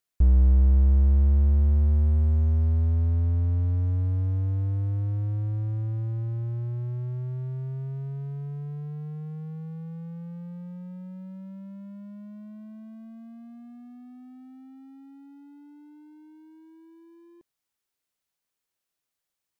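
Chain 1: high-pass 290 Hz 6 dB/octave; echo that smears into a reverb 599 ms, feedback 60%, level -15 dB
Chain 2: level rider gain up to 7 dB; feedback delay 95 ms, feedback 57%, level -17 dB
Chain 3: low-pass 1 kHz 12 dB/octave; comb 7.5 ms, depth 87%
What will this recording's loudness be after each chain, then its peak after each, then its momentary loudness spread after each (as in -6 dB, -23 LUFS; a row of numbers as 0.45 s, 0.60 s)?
-37.5 LUFS, -19.0 LUFS, -28.5 LUFS; -27.0 dBFS, -6.5 dBFS, -11.5 dBFS; 19 LU, 21 LU, 19 LU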